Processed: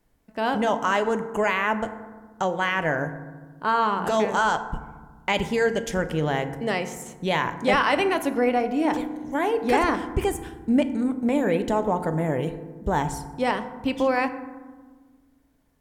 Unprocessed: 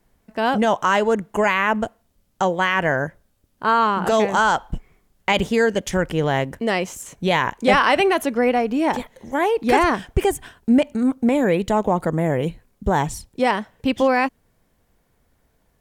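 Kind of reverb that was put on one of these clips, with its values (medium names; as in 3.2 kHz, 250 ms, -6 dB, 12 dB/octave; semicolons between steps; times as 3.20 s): FDN reverb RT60 1.4 s, low-frequency decay 1.6×, high-frequency decay 0.4×, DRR 9 dB; trim -5 dB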